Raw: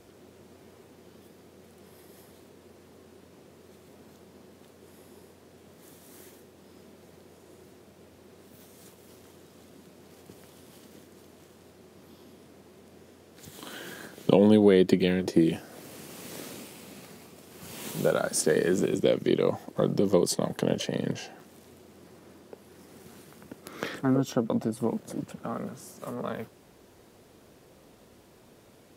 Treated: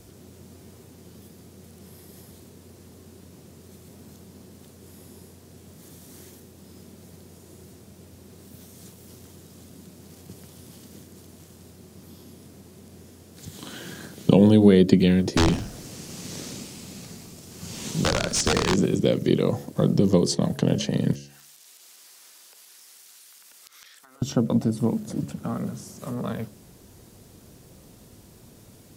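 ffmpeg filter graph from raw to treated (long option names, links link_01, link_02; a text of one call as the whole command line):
ffmpeg -i in.wav -filter_complex "[0:a]asettb=1/sr,asplit=3[link_01][link_02][link_03];[link_01]atrim=end=15.374[link_04];[link_02]atrim=start=15.37:end=18.76,asetpts=PTS-STARTPTS,afade=type=in:duration=0.004:curve=qsin,afade=type=out:start_time=3.386:duration=0.004:curve=qsin,equalizer=frequency=6400:width=1.1:gain=5,aeval=exprs='(mod(6.31*val(0)+1,2)-1)/6.31':channel_layout=same,asplit=4[link_05][link_06][link_07][link_08];[link_06]adelay=104,afreqshift=-65,volume=-15dB[link_09];[link_07]adelay=208,afreqshift=-130,volume=-24.9dB[link_10];[link_08]adelay=312,afreqshift=-195,volume=-34.8dB[link_11];[link_05][link_09][link_10][link_11]amix=inputs=4:normalize=0,atrim=end_sample=149499[link_12];[link_03]atrim=start=18.756[link_13];[link_04][link_12]acrossfade=duration=0.004:curve1=hsin:curve2=qsin[link_14];[link_14][link_13]acrossfade=duration=0.004:curve1=qsin:curve2=hsin,asettb=1/sr,asplit=3[link_15][link_16][link_17];[link_15]atrim=end=21.134[link_18];[link_16]atrim=start=21.13:end=24.22,asetpts=PTS-STARTPTS,afade=type=in:duration=0.004:curve=qsin,afade=type=out:start_time=3.086:duration=0.004:curve=qsin,highpass=780,tiltshelf=frequency=1200:gain=-9,acompressor=threshold=-51dB:ratio=8:attack=3.2:release=140:knee=1:detection=peak[link_19];[link_17]atrim=start=24.216[link_20];[link_18][link_19]acrossfade=duration=0.004:curve1=hsin:curve2=qsin[link_21];[link_21][link_20]acrossfade=duration=0.004:curve1=qsin:curve2=hsin,acrossover=split=6600[link_22][link_23];[link_23]acompressor=threshold=-59dB:ratio=4:attack=1:release=60[link_24];[link_22][link_24]amix=inputs=2:normalize=0,bass=frequency=250:gain=12,treble=frequency=4000:gain=10,bandreject=frequency=70.56:width_type=h:width=4,bandreject=frequency=141.12:width_type=h:width=4,bandreject=frequency=211.68:width_type=h:width=4,bandreject=frequency=282.24:width_type=h:width=4,bandreject=frequency=352.8:width_type=h:width=4,bandreject=frequency=423.36:width_type=h:width=4,bandreject=frequency=493.92:width_type=h:width=4,bandreject=frequency=564.48:width_type=h:width=4,bandreject=frequency=635.04:width_type=h:width=4" out.wav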